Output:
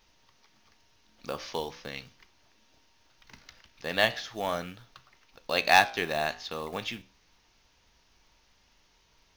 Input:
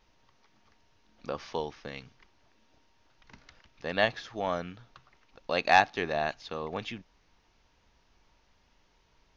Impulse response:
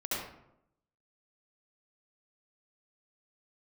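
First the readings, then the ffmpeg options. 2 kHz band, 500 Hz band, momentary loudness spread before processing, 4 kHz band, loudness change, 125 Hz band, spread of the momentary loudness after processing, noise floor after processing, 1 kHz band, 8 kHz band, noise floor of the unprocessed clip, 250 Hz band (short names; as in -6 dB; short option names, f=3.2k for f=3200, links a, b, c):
+2.5 dB, -0.5 dB, 21 LU, +5.5 dB, +1.5 dB, -1.0 dB, 21 LU, -66 dBFS, 0.0 dB, n/a, -68 dBFS, -0.5 dB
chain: -af "acrusher=bits=7:mode=log:mix=0:aa=0.000001,flanger=delay=9.6:depth=9.8:regen=-78:speed=0.4:shape=triangular,highshelf=f=2.5k:g=9.5,volume=3.5dB"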